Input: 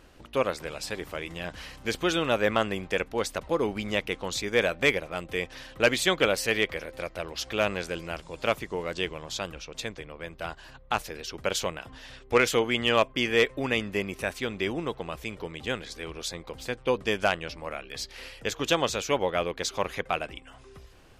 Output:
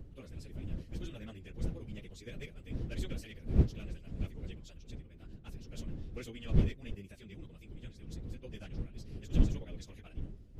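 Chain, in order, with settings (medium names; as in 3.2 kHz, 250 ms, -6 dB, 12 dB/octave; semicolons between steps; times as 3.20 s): wind noise 410 Hz -25 dBFS; amplifier tone stack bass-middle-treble 10-0-1; plain phase-vocoder stretch 0.5×; trim +3.5 dB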